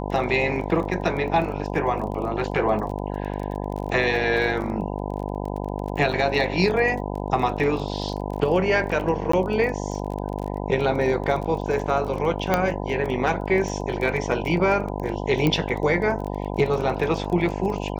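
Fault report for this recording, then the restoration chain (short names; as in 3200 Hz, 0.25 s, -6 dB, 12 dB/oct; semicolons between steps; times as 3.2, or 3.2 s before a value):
buzz 50 Hz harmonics 20 -29 dBFS
crackle 22/s -30 dBFS
9.32–9.33 gap 14 ms
12.54 pop -6 dBFS
15.47 pop -9 dBFS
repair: de-click; de-hum 50 Hz, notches 20; interpolate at 9.32, 14 ms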